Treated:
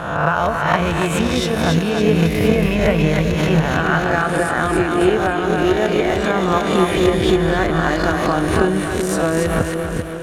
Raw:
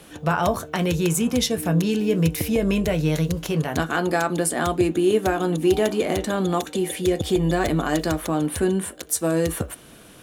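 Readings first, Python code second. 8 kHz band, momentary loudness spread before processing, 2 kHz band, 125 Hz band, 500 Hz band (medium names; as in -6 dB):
-2.0 dB, 4 LU, +9.5 dB, +5.0 dB, +5.5 dB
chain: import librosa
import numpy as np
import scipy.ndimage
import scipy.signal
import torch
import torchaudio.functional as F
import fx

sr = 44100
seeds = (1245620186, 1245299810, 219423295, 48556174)

y = fx.spec_swells(x, sr, rise_s=0.81)
y = fx.peak_eq(y, sr, hz=1500.0, db=9.0, octaves=2.4)
y = fx.rider(y, sr, range_db=10, speed_s=0.5)
y = fx.lowpass(y, sr, hz=3100.0, slope=6)
y = fx.low_shelf(y, sr, hz=92.0, db=10.5)
y = fx.echo_split(y, sr, split_hz=520.0, low_ms=382, high_ms=278, feedback_pct=52, wet_db=-4.0)
y = fx.transient(y, sr, attack_db=8, sustain_db=2)
y = fx.pre_swell(y, sr, db_per_s=48.0)
y = y * librosa.db_to_amplitude(-4.0)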